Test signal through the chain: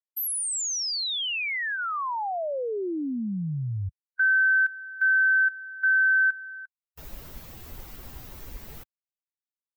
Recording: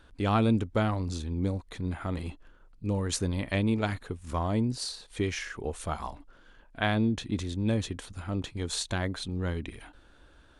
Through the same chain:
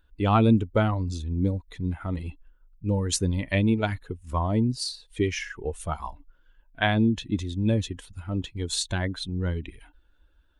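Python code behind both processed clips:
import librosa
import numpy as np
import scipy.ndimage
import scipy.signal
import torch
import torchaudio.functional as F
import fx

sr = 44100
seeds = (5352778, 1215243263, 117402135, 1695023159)

y = fx.bin_expand(x, sr, power=1.5)
y = F.gain(torch.from_numpy(y), 6.5).numpy()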